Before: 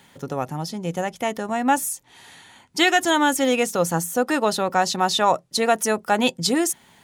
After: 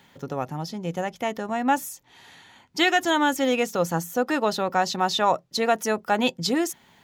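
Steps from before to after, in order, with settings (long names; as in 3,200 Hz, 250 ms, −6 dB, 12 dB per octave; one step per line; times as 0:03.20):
parametric band 9,300 Hz −11.5 dB 0.57 octaves
level −2.5 dB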